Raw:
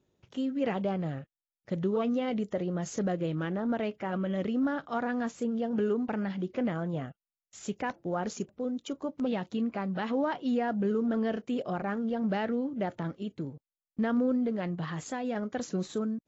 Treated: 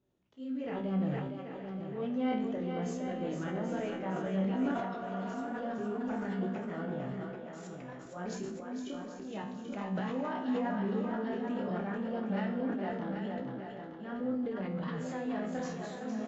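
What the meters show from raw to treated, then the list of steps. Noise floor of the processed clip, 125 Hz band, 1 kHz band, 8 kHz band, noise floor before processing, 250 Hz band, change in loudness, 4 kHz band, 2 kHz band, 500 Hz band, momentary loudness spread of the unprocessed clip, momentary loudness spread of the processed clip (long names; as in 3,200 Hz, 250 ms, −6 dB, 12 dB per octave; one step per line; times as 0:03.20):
−46 dBFS, −3.0 dB, −3.0 dB, can't be measured, below −85 dBFS, −4.0 dB, −4.5 dB, −5.0 dB, −4.0 dB, −4.5 dB, 8 LU, 9 LU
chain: multi-voice chorus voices 2, 1.3 Hz, delay 25 ms, depth 3 ms
high-shelf EQ 5,600 Hz −10.5 dB
brickwall limiter −27.5 dBFS, peak gain reduction 7.5 dB
volume swells 174 ms
tuned comb filter 64 Hz, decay 0.63 s, harmonics all, mix 80%
on a send: echo with a time of its own for lows and highs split 320 Hz, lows 113 ms, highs 461 ms, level −5.5 dB
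on the sum: healed spectral selection 0:04.77–0:05.41, 220–3,300 Hz after
single-tap delay 785 ms −8 dB
level that may fall only so fast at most 33 dB per second
level +7 dB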